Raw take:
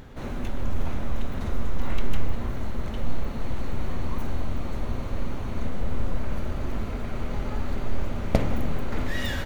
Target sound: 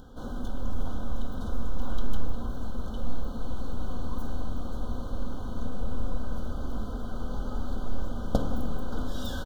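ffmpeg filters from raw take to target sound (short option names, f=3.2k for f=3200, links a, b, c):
-af "asuperstop=centerf=2200:order=20:qfactor=1.6,aecho=1:1:4:0.37,volume=-4.5dB"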